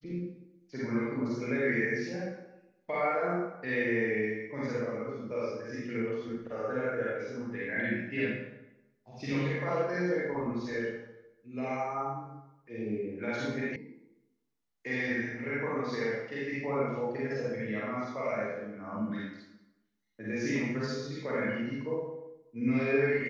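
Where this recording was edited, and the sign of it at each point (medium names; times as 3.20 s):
13.76 s: sound stops dead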